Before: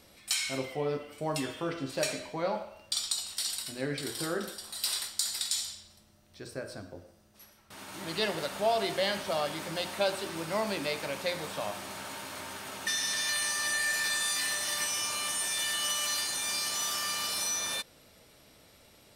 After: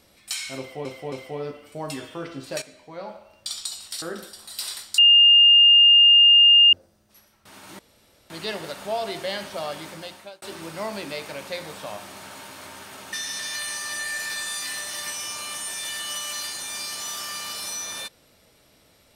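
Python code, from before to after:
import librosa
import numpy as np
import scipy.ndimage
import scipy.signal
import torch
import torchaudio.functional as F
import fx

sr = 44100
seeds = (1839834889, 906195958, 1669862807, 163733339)

y = fx.edit(x, sr, fx.repeat(start_s=0.58, length_s=0.27, count=3),
    fx.fade_in_from(start_s=2.08, length_s=0.86, floor_db=-13.5),
    fx.cut(start_s=3.48, length_s=0.79),
    fx.bleep(start_s=5.23, length_s=1.75, hz=2820.0, db=-10.0),
    fx.insert_room_tone(at_s=8.04, length_s=0.51),
    fx.fade_out_span(start_s=9.59, length_s=0.57), tone=tone)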